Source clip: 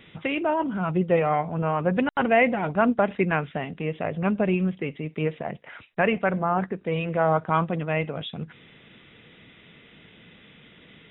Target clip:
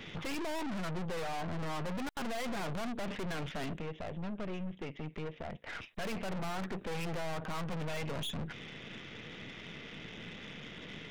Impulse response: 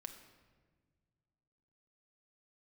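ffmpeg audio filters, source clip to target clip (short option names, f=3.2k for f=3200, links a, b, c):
-filter_complex "[0:a]asplit=3[a][b][c];[a]afade=t=out:st=3.76:d=0.02[d];[b]acompressor=threshold=-42dB:ratio=3,afade=t=in:st=3.76:d=0.02,afade=t=out:st=5.85:d=0.02[e];[c]afade=t=in:st=5.85:d=0.02[f];[d][e][f]amix=inputs=3:normalize=0,alimiter=limit=-19dB:level=0:latency=1:release=93,aeval=exprs='(tanh(178*val(0)+0.7)-tanh(0.7))/178':c=same,volume=8dB"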